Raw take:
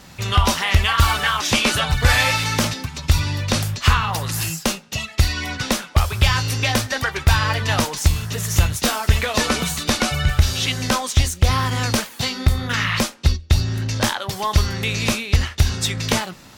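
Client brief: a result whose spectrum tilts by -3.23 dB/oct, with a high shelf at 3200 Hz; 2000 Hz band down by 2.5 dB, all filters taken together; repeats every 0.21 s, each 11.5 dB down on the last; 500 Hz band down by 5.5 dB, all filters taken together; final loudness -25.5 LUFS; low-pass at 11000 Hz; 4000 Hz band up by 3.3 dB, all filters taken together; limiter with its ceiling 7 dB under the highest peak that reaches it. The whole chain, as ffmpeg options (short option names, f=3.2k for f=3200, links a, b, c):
-af "lowpass=11k,equalizer=f=500:t=o:g=-6.5,equalizer=f=2k:t=o:g=-4,highshelf=f=3.2k:g=-4,equalizer=f=4k:t=o:g=8.5,alimiter=limit=-10dB:level=0:latency=1,aecho=1:1:210|420|630:0.266|0.0718|0.0194,volume=-4dB"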